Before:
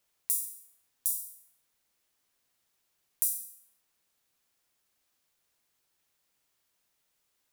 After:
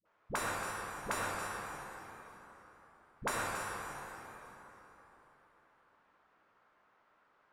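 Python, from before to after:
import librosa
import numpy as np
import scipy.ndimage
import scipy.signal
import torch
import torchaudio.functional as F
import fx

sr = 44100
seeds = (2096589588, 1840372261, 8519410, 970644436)

p1 = fx.low_shelf(x, sr, hz=160.0, db=-12.0)
p2 = fx.leveller(p1, sr, passes=2)
p3 = fx.lowpass_res(p2, sr, hz=1300.0, q=1.8)
p4 = fx.dispersion(p3, sr, late='highs', ms=56.0, hz=400.0)
p5 = p4 + fx.echo_single(p4, sr, ms=276, db=-10.5, dry=0)
p6 = fx.rev_plate(p5, sr, seeds[0], rt60_s=3.9, hf_ratio=0.7, predelay_ms=0, drr_db=-2.5)
y = p6 * 10.0 ** (13.5 / 20.0)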